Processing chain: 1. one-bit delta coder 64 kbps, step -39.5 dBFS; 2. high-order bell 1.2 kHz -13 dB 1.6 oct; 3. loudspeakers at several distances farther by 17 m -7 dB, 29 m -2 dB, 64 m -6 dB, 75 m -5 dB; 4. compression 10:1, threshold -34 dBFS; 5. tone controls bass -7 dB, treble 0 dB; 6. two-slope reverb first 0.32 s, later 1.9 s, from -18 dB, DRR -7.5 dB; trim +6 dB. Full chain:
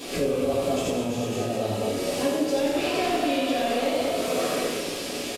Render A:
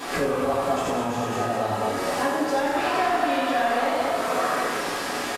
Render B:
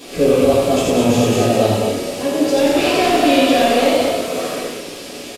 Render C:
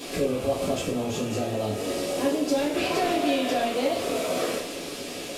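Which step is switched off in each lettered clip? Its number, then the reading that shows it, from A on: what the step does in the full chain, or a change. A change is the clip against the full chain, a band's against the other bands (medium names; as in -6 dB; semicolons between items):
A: 2, 1 kHz band +9.0 dB; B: 4, mean gain reduction 7.5 dB; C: 3, crest factor change +3.0 dB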